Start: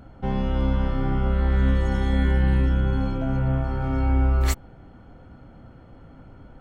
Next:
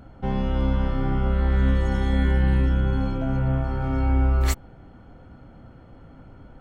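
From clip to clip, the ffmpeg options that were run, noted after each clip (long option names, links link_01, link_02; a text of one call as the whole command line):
ffmpeg -i in.wav -af anull out.wav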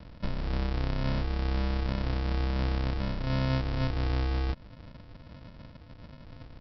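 ffmpeg -i in.wav -af "acompressor=threshold=-25dB:ratio=4,aresample=11025,acrusher=samples=28:mix=1:aa=0.000001,aresample=44100,volume=-1.5dB" out.wav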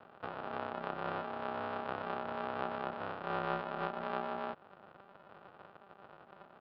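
ffmpeg -i in.wav -af "highpass=frequency=300:width=0.5412,highpass=frequency=300:width=1.3066,equalizer=frequency=470:width_type=q:width=4:gain=-8,equalizer=frequency=730:width_type=q:width=4:gain=9,equalizer=frequency=1300:width_type=q:width=4:gain=8,equalizer=frequency=2100:width_type=q:width=4:gain=-9,lowpass=frequency=2800:width=0.5412,lowpass=frequency=2800:width=1.3066,aeval=exprs='val(0)*sin(2*PI*95*n/s)':channel_layout=same,volume=1dB" out.wav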